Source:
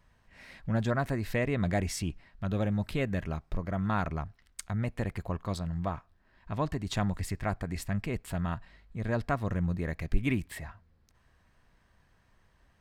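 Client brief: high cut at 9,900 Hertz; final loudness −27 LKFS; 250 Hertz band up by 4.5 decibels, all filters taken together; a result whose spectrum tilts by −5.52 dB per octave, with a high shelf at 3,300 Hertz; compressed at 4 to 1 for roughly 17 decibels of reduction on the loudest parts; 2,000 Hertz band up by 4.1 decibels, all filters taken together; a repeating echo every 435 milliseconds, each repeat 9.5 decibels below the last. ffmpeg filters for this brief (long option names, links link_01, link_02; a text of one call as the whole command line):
ffmpeg -i in.wav -af "lowpass=9900,equalizer=frequency=250:width_type=o:gain=6,equalizer=frequency=2000:width_type=o:gain=7,highshelf=frequency=3300:gain=-7,acompressor=threshold=-39dB:ratio=4,aecho=1:1:435|870|1305|1740:0.335|0.111|0.0365|0.012,volume=15dB" out.wav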